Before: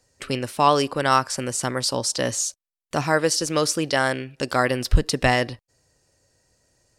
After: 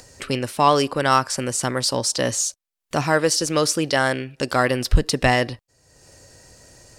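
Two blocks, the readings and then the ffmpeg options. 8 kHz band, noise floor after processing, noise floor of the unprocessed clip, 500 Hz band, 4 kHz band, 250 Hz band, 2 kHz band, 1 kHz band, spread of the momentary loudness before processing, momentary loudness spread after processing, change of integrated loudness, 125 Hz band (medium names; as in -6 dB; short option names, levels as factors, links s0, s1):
+2.0 dB, -83 dBFS, under -85 dBFS, +1.5 dB, +2.0 dB, +2.0 dB, +1.5 dB, +1.5 dB, 8 LU, 8 LU, +1.5 dB, +2.0 dB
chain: -filter_complex "[0:a]asplit=2[s0][s1];[s1]asoftclip=type=tanh:threshold=0.112,volume=0.355[s2];[s0][s2]amix=inputs=2:normalize=0,acompressor=mode=upward:threshold=0.0178:ratio=2.5"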